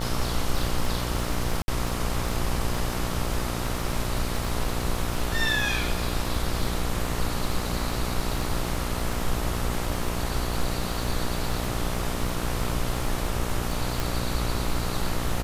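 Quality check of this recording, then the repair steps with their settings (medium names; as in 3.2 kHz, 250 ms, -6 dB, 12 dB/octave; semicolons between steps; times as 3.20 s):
buzz 60 Hz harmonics 23 -31 dBFS
crackle 43 per s -30 dBFS
1.62–1.68 s: dropout 60 ms
14.00 s: pop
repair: de-click; de-hum 60 Hz, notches 23; interpolate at 1.62 s, 60 ms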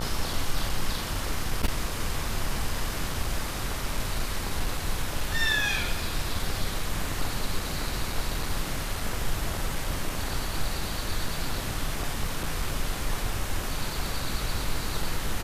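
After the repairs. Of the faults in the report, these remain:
nothing left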